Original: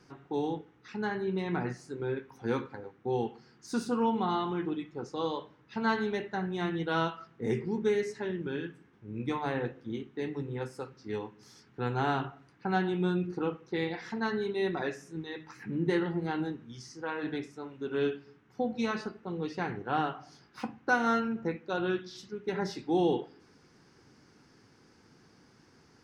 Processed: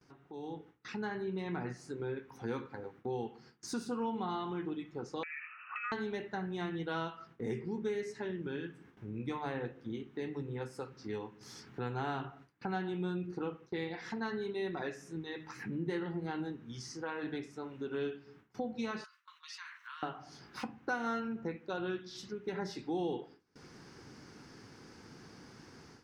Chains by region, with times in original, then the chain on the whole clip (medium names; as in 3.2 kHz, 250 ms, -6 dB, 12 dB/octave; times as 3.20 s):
5.23–5.92 s: frequency inversion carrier 2.8 kHz + compression 10:1, threshold -40 dBFS + resonant high-pass 1.3 kHz, resonance Q 9.2
19.04–20.03 s: treble shelf 2.8 kHz +10 dB + compression 5:1, threshold -45 dBFS + steep high-pass 1 kHz 96 dB/octave
whole clip: compression 2:1, threshold -52 dBFS; gate with hold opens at -53 dBFS; level rider gain up to 13 dB; trim -6.5 dB